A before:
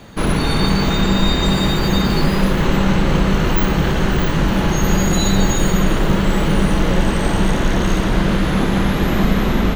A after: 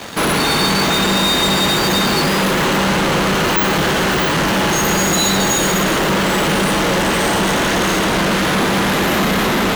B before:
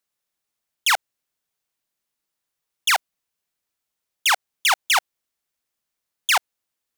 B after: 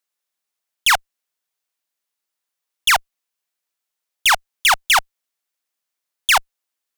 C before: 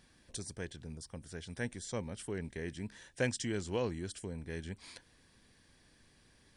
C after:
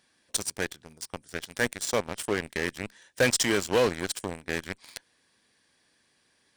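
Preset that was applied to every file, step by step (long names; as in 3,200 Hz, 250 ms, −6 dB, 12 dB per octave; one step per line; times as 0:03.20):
high-pass filter 490 Hz 6 dB per octave
in parallel at −6 dB: fuzz pedal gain 39 dB, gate −45 dBFS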